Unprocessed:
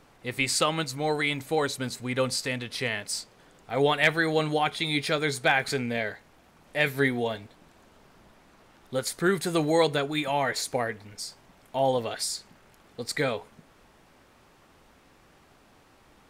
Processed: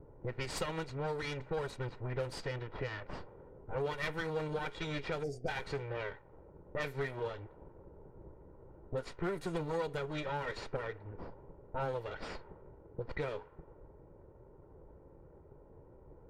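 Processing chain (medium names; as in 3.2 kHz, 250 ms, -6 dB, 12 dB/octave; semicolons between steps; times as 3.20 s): comb filter that takes the minimum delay 2.1 ms; level-controlled noise filter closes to 2.6 kHz, open at -25.5 dBFS; time-frequency box 5.23–5.48 s, 780–4500 Hz -27 dB; level-controlled noise filter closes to 450 Hz, open at -24 dBFS; treble shelf 2.6 kHz -11.5 dB; compression 3:1, threshold -48 dBFS, peak gain reduction 21 dB; trim +8 dB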